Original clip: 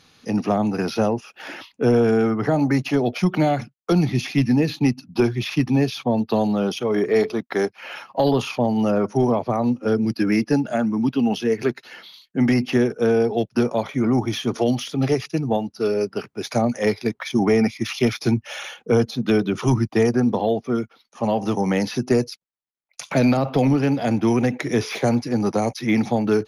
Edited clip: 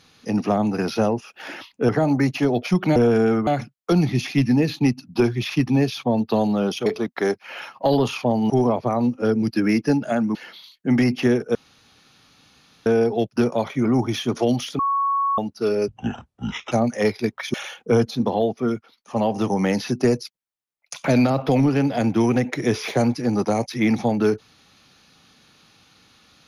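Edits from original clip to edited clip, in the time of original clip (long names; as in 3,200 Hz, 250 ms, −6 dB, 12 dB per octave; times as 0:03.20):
0:01.89–0:02.40: move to 0:03.47
0:06.86–0:07.20: remove
0:08.84–0:09.13: remove
0:10.98–0:11.85: remove
0:13.05: splice in room tone 1.31 s
0:14.98–0:15.57: beep over 1,110 Hz −18 dBFS
0:16.07–0:16.54: play speed 56%
0:17.36–0:18.54: remove
0:19.20–0:20.27: remove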